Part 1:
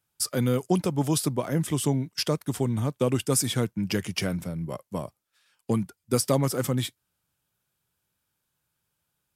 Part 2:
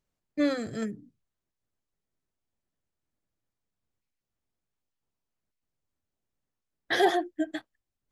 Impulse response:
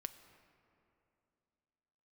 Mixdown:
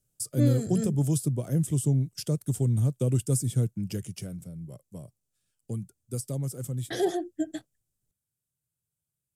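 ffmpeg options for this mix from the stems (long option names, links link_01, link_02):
-filter_complex "[0:a]equalizer=frequency=5700:width=1.5:gain=-2.5,volume=-2.5dB,afade=type=out:start_time=3.53:duration=0.74:silence=0.398107[link_01];[1:a]volume=2.5dB[link_02];[link_01][link_02]amix=inputs=2:normalize=0,equalizer=frequency=125:width_type=o:width=1:gain=8,equalizer=frequency=250:width_type=o:width=1:gain=-3,equalizer=frequency=1000:width_type=o:width=1:gain=-12,equalizer=frequency=2000:width_type=o:width=1:gain=-9,equalizer=frequency=4000:width_type=o:width=1:gain=-5,equalizer=frequency=8000:width_type=o:width=1:gain=8,acrossover=split=490[link_03][link_04];[link_04]acompressor=threshold=-37dB:ratio=2[link_05];[link_03][link_05]amix=inputs=2:normalize=0"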